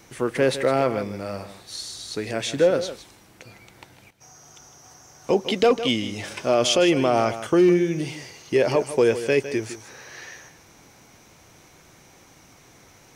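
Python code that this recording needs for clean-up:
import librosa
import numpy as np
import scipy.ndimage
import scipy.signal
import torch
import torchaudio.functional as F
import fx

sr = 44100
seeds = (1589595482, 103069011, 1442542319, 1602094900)

y = fx.fix_declip(x, sr, threshold_db=-10.0)
y = fx.fix_echo_inverse(y, sr, delay_ms=157, level_db=-12.5)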